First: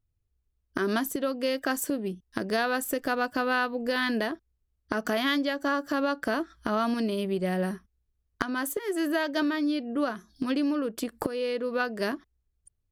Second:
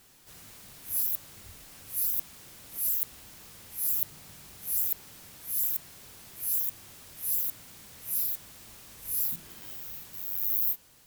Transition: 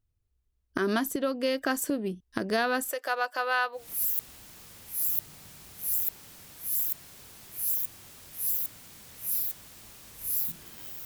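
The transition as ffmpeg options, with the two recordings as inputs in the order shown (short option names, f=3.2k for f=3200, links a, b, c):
-filter_complex "[0:a]asettb=1/sr,asplit=3[a][b][c];[a]atrim=end=2.904[d];[b]atrim=start=2.9:end=3.88,asetpts=PTS-STARTPTS,afade=t=in:d=0.004:c=qsin,afade=t=out:st=0.976:d=0.004:c=qsin,highpass=f=520:w=0.5412,highpass=f=520:w=1.3066[e];[c]atrim=start=3.876[f];[d][e]acrossfade=d=0.004:c1=hsin:c2=qsin[g];[g][f]acrossfade=d=0.004:c1=qsin:c2=hsin,apad=whole_dur=11.05,atrim=end=11.05,atrim=end=3.88,asetpts=PTS-STARTPTS[h];[1:a]atrim=start=2.56:end=9.89,asetpts=PTS-STARTPTS[i];[h][i]acrossfade=d=0.16:c1=tri:c2=tri"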